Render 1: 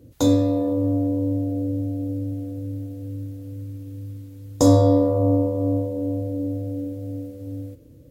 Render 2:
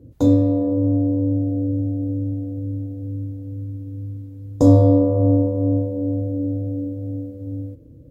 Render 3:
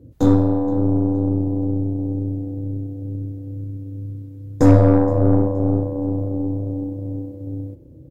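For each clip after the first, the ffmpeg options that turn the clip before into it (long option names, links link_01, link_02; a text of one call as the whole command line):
ffmpeg -i in.wav -af "tiltshelf=frequency=940:gain=8.5,volume=-4dB" out.wav
ffmpeg -i in.wav -filter_complex "[0:a]aeval=exprs='0.891*(cos(1*acos(clip(val(0)/0.891,-1,1)))-cos(1*PI/2))+0.0708*(cos(4*acos(clip(val(0)/0.891,-1,1)))-cos(4*PI/2))+0.0501*(cos(8*acos(clip(val(0)/0.891,-1,1)))-cos(8*PI/2))':channel_layout=same,asplit=4[link_01][link_02][link_03][link_04];[link_02]adelay=471,afreqshift=31,volume=-22.5dB[link_05];[link_03]adelay=942,afreqshift=62,volume=-31.1dB[link_06];[link_04]adelay=1413,afreqshift=93,volume=-39.8dB[link_07];[link_01][link_05][link_06][link_07]amix=inputs=4:normalize=0" out.wav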